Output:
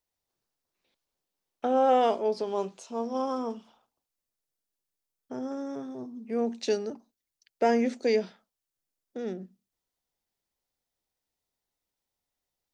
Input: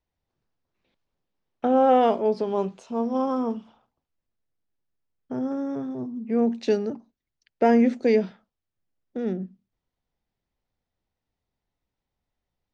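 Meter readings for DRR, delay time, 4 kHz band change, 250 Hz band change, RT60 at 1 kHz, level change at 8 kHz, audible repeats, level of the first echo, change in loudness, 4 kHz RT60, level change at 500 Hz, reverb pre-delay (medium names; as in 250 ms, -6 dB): no reverb, no echo, +1.5 dB, -8.5 dB, no reverb, no reading, no echo, no echo, -5.0 dB, no reverb, -4.0 dB, no reverb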